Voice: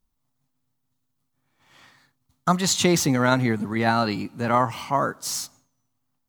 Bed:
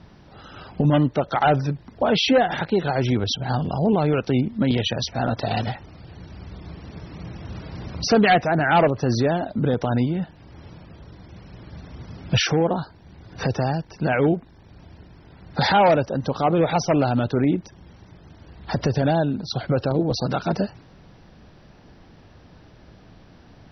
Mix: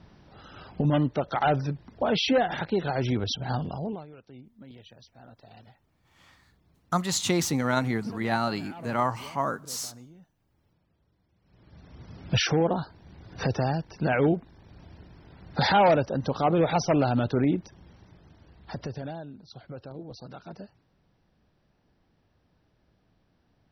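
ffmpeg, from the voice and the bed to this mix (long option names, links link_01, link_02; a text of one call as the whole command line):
ffmpeg -i stem1.wav -i stem2.wav -filter_complex "[0:a]adelay=4450,volume=-5.5dB[link_01];[1:a]volume=18.5dB,afade=type=out:start_time=3.55:duration=0.51:silence=0.0794328,afade=type=in:start_time=11.41:duration=1.08:silence=0.0630957,afade=type=out:start_time=17.37:duration=1.85:silence=0.158489[link_02];[link_01][link_02]amix=inputs=2:normalize=0" out.wav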